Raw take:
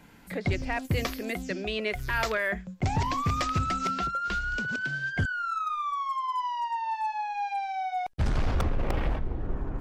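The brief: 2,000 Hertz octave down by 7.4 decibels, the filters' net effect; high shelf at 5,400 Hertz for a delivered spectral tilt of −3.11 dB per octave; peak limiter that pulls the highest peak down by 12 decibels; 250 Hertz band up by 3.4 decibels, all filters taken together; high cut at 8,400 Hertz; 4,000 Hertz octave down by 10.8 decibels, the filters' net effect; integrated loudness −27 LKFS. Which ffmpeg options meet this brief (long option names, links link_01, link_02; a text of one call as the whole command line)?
ffmpeg -i in.wav -af "lowpass=8400,equalizer=frequency=250:width_type=o:gain=4.5,equalizer=frequency=2000:width_type=o:gain=-8.5,equalizer=frequency=4000:width_type=o:gain=-8,highshelf=frequency=5400:gain=-8,volume=8dB,alimiter=limit=-19.5dB:level=0:latency=1" out.wav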